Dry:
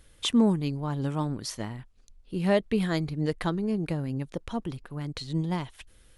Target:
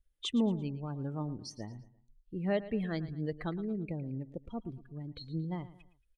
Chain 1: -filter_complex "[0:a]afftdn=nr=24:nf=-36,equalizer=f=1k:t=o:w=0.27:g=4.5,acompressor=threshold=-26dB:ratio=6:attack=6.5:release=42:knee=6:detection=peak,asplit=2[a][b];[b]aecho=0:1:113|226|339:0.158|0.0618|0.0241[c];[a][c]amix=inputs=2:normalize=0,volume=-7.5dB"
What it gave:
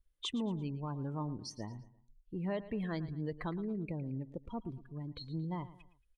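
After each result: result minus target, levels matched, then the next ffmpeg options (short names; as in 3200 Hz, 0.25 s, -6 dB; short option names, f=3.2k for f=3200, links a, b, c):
compressor: peak gain reduction +8.5 dB; 1000 Hz band +3.5 dB
-filter_complex "[0:a]afftdn=nr=24:nf=-36,equalizer=f=1k:t=o:w=0.27:g=4.5,asplit=2[a][b];[b]aecho=0:1:113|226|339:0.158|0.0618|0.0241[c];[a][c]amix=inputs=2:normalize=0,volume=-7.5dB"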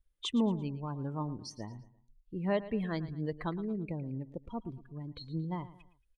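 1000 Hz band +4.0 dB
-filter_complex "[0:a]afftdn=nr=24:nf=-36,equalizer=f=1k:t=o:w=0.27:g=-7.5,asplit=2[a][b];[b]aecho=0:1:113|226|339:0.158|0.0618|0.0241[c];[a][c]amix=inputs=2:normalize=0,volume=-7.5dB"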